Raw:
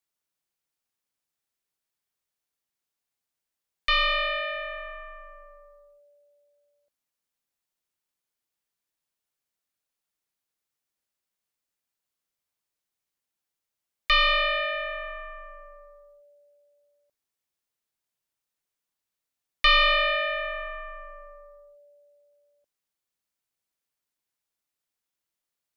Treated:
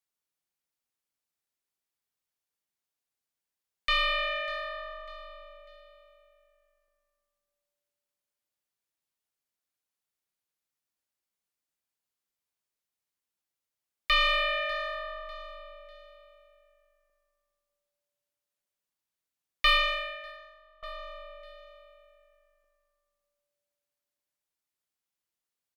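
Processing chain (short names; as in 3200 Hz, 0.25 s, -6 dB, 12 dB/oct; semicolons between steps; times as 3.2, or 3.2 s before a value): added harmonics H 6 -32 dB, 8 -33 dB, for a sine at -13 dBFS; feedback echo 0.597 s, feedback 35%, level -15.5 dB; 19.7–20.83 upward expander 2.5:1, over -32 dBFS; gain -3.5 dB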